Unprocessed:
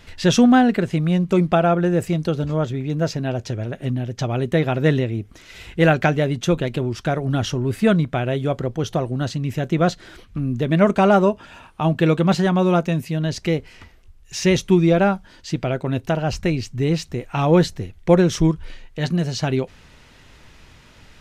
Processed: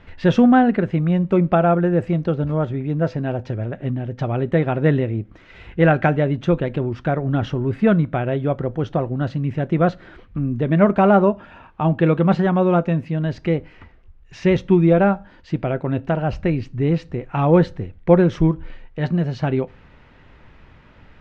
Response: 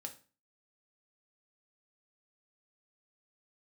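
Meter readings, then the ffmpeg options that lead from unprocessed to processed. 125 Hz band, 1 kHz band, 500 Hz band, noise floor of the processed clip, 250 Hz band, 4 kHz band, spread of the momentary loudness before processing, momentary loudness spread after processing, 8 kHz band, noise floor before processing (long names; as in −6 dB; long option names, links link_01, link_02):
+1.0 dB, +1.0 dB, +1.0 dB, −48 dBFS, +0.5 dB, −9.5 dB, 11 LU, 11 LU, below −15 dB, −49 dBFS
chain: -filter_complex "[0:a]lowpass=2000,asplit=2[link_01][link_02];[1:a]atrim=start_sample=2205[link_03];[link_02][link_03]afir=irnorm=-1:irlink=0,volume=-7.5dB[link_04];[link_01][link_04]amix=inputs=2:normalize=0,volume=-1dB"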